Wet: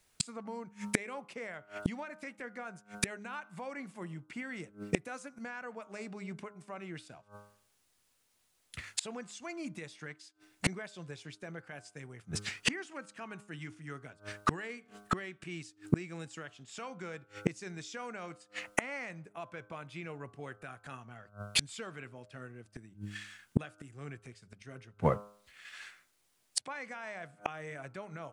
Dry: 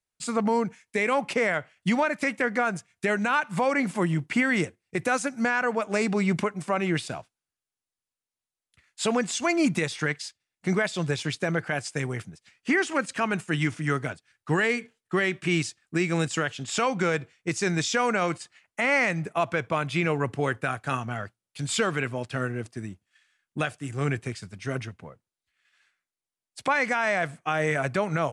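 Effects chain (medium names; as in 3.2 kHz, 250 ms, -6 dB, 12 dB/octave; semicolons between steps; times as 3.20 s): de-hum 102.8 Hz, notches 15; inverted gate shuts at -32 dBFS, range -36 dB; trim +18 dB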